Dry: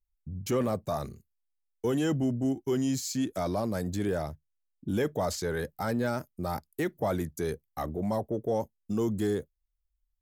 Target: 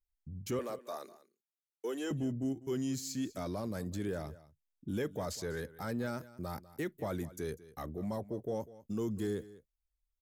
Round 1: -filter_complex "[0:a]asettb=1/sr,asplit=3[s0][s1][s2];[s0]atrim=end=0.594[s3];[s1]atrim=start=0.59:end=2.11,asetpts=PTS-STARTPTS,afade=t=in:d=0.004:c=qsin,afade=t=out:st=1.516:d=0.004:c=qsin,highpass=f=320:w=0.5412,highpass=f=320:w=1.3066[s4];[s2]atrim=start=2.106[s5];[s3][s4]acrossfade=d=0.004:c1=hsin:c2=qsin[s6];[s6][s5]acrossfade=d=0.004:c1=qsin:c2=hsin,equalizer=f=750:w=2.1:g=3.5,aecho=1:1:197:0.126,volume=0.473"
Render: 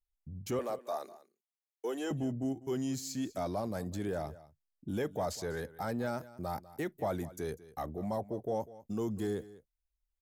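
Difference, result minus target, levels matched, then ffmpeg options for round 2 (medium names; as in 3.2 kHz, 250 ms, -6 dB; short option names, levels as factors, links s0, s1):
1 kHz band +4.5 dB
-filter_complex "[0:a]asettb=1/sr,asplit=3[s0][s1][s2];[s0]atrim=end=0.594[s3];[s1]atrim=start=0.59:end=2.11,asetpts=PTS-STARTPTS,afade=t=in:d=0.004:c=qsin,afade=t=out:st=1.516:d=0.004:c=qsin,highpass=f=320:w=0.5412,highpass=f=320:w=1.3066[s4];[s2]atrim=start=2.106[s5];[s3][s4]acrossfade=d=0.004:c1=hsin:c2=qsin[s6];[s6][s5]acrossfade=d=0.004:c1=qsin:c2=hsin,equalizer=f=750:w=2.1:g=-5,aecho=1:1:197:0.126,volume=0.473"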